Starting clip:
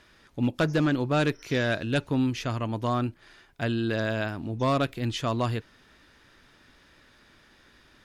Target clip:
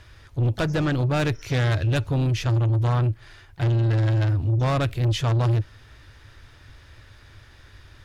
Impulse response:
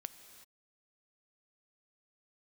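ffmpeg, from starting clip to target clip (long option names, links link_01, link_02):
-filter_complex "[0:a]lowshelf=frequency=140:width_type=q:width=3:gain=10,asplit=2[link_01][link_02];[link_02]asetrate=52444,aresample=44100,atempo=0.840896,volume=-16dB[link_03];[link_01][link_03]amix=inputs=2:normalize=0,asoftclip=type=tanh:threshold=-22.5dB,volume=4.5dB"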